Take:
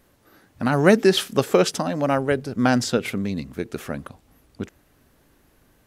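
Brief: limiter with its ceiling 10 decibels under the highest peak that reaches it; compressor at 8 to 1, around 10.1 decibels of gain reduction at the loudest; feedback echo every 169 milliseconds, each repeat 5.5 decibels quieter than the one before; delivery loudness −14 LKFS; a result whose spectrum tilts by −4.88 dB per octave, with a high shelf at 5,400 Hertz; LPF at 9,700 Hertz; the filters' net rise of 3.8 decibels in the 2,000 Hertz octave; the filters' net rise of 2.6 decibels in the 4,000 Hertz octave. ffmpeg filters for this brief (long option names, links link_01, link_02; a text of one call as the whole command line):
ffmpeg -i in.wav -af "lowpass=9700,equalizer=frequency=2000:width_type=o:gain=5,equalizer=frequency=4000:width_type=o:gain=3.5,highshelf=frequency=5400:gain=-4.5,acompressor=threshold=-20dB:ratio=8,alimiter=limit=-20dB:level=0:latency=1,aecho=1:1:169|338|507|676|845|1014|1183:0.531|0.281|0.149|0.079|0.0419|0.0222|0.0118,volume=16dB" out.wav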